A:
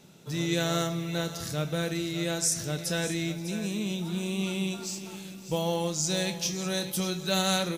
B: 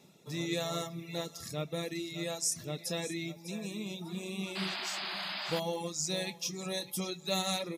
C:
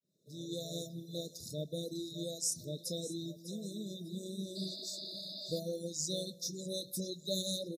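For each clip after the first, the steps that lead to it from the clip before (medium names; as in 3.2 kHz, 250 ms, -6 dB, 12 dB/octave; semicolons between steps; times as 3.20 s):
reverb removal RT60 1.1 s; comb of notches 1.5 kHz; painted sound noise, 4.55–5.60 s, 570–5100 Hz -35 dBFS; trim -3.5 dB
fade-in on the opening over 0.82 s; brick-wall FIR band-stop 660–3500 Hz; speakerphone echo 160 ms, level -24 dB; trim -2.5 dB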